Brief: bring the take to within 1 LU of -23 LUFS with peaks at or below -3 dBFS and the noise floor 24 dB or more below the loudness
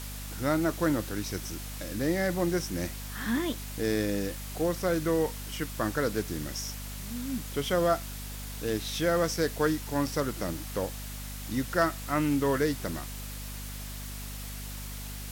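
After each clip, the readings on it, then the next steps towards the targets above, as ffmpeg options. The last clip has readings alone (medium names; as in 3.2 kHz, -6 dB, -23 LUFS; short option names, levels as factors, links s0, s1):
hum 50 Hz; highest harmonic 250 Hz; hum level -38 dBFS; noise floor -39 dBFS; noise floor target -55 dBFS; loudness -31.0 LUFS; peak level -13.5 dBFS; loudness target -23.0 LUFS
-> -af "bandreject=f=50:t=h:w=6,bandreject=f=100:t=h:w=6,bandreject=f=150:t=h:w=6,bandreject=f=200:t=h:w=6,bandreject=f=250:t=h:w=6"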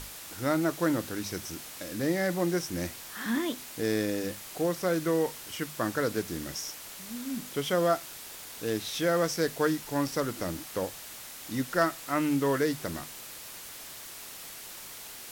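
hum not found; noise floor -44 dBFS; noise floor target -56 dBFS
-> -af "afftdn=nr=12:nf=-44"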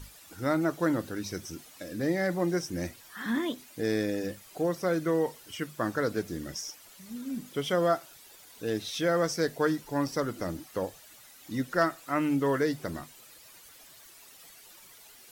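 noise floor -53 dBFS; noise floor target -55 dBFS
-> -af "afftdn=nr=6:nf=-53"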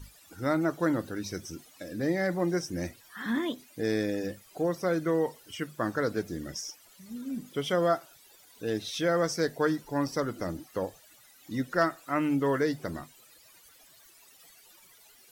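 noise floor -58 dBFS; loudness -31.0 LUFS; peak level -14.0 dBFS; loudness target -23.0 LUFS
-> -af "volume=2.51"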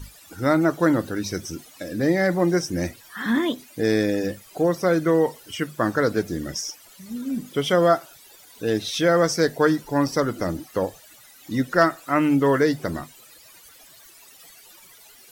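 loudness -23.0 LUFS; peak level -6.0 dBFS; noise floor -50 dBFS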